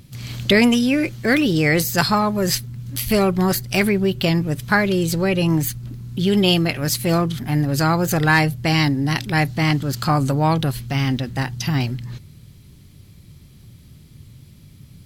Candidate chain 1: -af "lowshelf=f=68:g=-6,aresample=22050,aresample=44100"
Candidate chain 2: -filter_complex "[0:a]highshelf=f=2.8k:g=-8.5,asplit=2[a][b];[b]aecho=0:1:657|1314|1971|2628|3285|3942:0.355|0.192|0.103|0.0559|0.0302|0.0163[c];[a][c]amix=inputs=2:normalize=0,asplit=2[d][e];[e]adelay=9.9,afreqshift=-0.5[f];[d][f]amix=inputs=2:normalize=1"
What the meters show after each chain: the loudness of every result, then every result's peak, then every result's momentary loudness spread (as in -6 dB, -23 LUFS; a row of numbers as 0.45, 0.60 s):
-19.5, -22.5 LUFS; -3.5, -6.5 dBFS; 8, 12 LU